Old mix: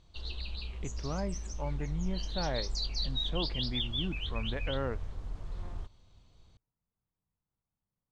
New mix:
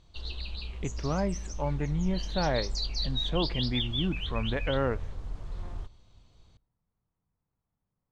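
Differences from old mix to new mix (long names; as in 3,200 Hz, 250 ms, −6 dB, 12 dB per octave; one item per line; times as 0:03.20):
speech +5.0 dB
reverb: on, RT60 0.85 s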